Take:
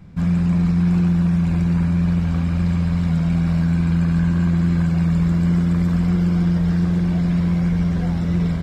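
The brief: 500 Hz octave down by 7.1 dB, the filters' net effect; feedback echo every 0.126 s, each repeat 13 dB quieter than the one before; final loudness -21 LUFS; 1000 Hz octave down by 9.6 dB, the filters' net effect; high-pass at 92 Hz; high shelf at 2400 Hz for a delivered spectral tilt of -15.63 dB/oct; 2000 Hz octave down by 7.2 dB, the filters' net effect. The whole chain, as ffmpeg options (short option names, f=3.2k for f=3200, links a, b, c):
-af "highpass=92,equalizer=f=500:t=o:g=-8.5,equalizer=f=1k:t=o:g=-8.5,equalizer=f=2k:t=o:g=-8.5,highshelf=f=2.4k:g=5.5,aecho=1:1:126|252|378:0.224|0.0493|0.0108,volume=-1dB"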